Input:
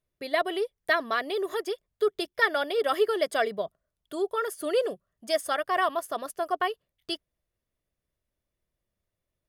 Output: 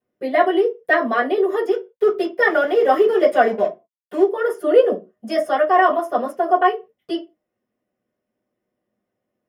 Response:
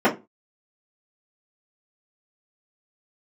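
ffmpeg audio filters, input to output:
-filter_complex "[0:a]highshelf=f=5.1k:g=10.5,asettb=1/sr,asplit=3[a][b][c];[a]atrim=end=1.714[d];[b]atrim=start=1.71:end=4.23,asetpts=PTS-STARTPTS,afade=t=in:d=0.004:c=qsin,afade=t=out:st=2.516:d=0.004:c=qsin,acrusher=bits=5:mix=0:aa=0.5[e];[c]atrim=start=4.226[f];[d][e]acrossfade=d=0.004:c1=hsin:c2=qsin[g];[g][f]acrossfade=d=0.004:c1=qsin:c2=hsin[h];[1:a]atrim=start_sample=2205[i];[h][i]afir=irnorm=-1:irlink=0,volume=-12.5dB"

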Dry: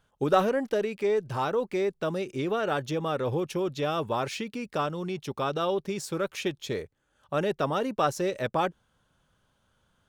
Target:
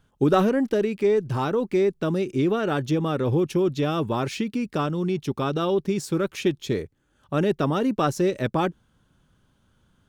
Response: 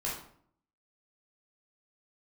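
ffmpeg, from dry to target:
-af "lowshelf=f=420:t=q:w=1.5:g=6,volume=2dB"

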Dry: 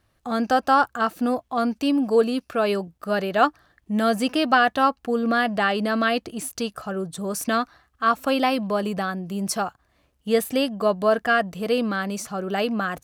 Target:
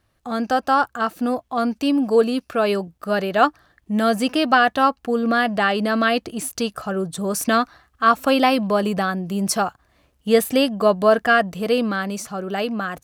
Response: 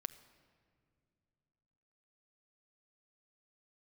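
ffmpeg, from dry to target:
-af "dynaudnorm=f=250:g=13:m=6dB"

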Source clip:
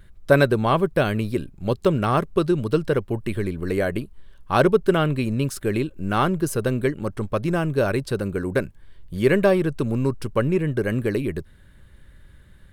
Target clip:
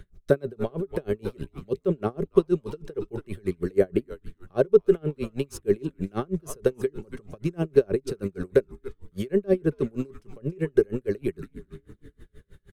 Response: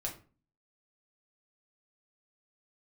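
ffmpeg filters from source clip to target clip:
-filter_complex "[0:a]equalizer=f=150:w=1.4:g=9.5,bandreject=f=950:w=8.6,asplit=5[a][b][c][d][e];[b]adelay=279,afreqshift=-140,volume=-16dB[f];[c]adelay=558,afreqshift=-280,volume=-23.5dB[g];[d]adelay=837,afreqshift=-420,volume=-31.1dB[h];[e]adelay=1116,afreqshift=-560,volume=-38.6dB[i];[a][f][g][h][i]amix=inputs=5:normalize=0,aphaser=in_gain=1:out_gain=1:delay=2.4:decay=0.31:speed=0.51:type=sinusoidal,acrossover=split=300|700[j][k][l];[j]acompressor=threshold=-26dB:ratio=4[m];[k]acompressor=threshold=-19dB:ratio=4[n];[l]acompressor=threshold=-36dB:ratio=4[o];[m][n][o]amix=inputs=3:normalize=0,equalizer=f=125:t=o:w=0.33:g=-7,equalizer=f=400:t=o:w=0.33:g=9,equalizer=f=6.3k:t=o:w=0.33:g=6,aeval=exprs='val(0)*pow(10,-33*(0.5-0.5*cos(2*PI*6.3*n/s))/20)':c=same"

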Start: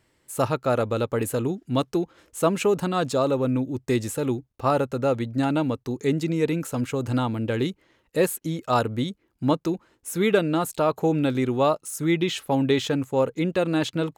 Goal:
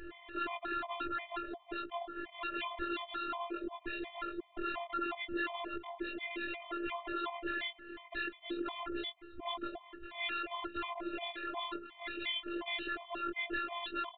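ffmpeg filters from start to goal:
-filter_complex "[0:a]afftfilt=real='re':imag='-im':win_size=2048:overlap=0.75,lowpass=f=2.4k:p=1,afftfilt=real='re*lt(hypot(re,im),0.0631)':imag='im*lt(hypot(re,im),0.0631)':win_size=1024:overlap=0.75,aecho=1:1:2.3:0.46,acompressor=threshold=-58dB:ratio=4,bandreject=f=60:t=h:w=6,bandreject=f=120:t=h:w=6,bandreject=f=180:t=h:w=6,bandreject=f=240:t=h:w=6,bandreject=f=300:t=h:w=6,bandreject=f=360:t=h:w=6,bandreject=f=420:t=h:w=6,bandreject=f=480:t=h:w=6,aresample=8000,aeval=exprs='0.00596*sin(PI/2*2*val(0)/0.00596)':c=same,aresample=44100,afftfilt=real='hypot(re,im)*cos(PI*b)':imag='0':win_size=512:overlap=0.75,asplit=2[a][b];[b]aecho=0:1:259|518|777:0.075|0.0285|0.0108[c];[a][c]amix=inputs=2:normalize=0,afftfilt=real='re*gt(sin(2*PI*2.8*pts/sr)*(1-2*mod(floor(b*sr/1024/610),2)),0)':imag='im*gt(sin(2*PI*2.8*pts/sr)*(1-2*mod(floor(b*sr/1024/610),2)),0)':win_size=1024:overlap=0.75,volume=18dB"

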